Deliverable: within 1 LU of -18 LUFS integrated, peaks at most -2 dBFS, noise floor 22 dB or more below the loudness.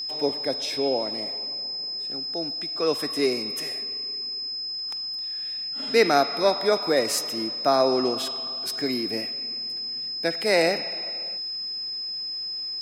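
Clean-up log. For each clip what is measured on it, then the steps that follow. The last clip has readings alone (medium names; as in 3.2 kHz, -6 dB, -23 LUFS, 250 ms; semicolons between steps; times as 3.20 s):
steady tone 5.1 kHz; tone level -29 dBFS; loudness -25.5 LUFS; peak level -7.0 dBFS; loudness target -18.0 LUFS
-> band-stop 5.1 kHz, Q 30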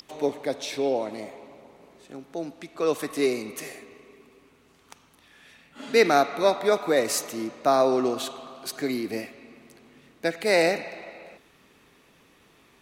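steady tone not found; loudness -25.5 LUFS; peak level -7.0 dBFS; loudness target -18.0 LUFS
-> trim +7.5 dB; peak limiter -2 dBFS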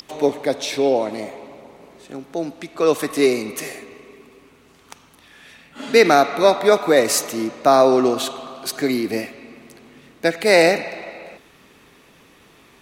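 loudness -18.5 LUFS; peak level -2.0 dBFS; noise floor -52 dBFS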